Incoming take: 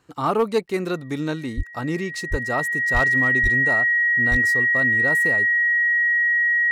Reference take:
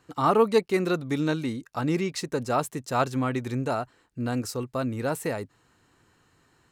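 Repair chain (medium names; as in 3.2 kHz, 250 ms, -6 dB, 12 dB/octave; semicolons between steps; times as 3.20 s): clip repair -12 dBFS; band-stop 1.9 kHz, Q 30; de-plosive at 1.56/2.30/2.93/3.42/4.30 s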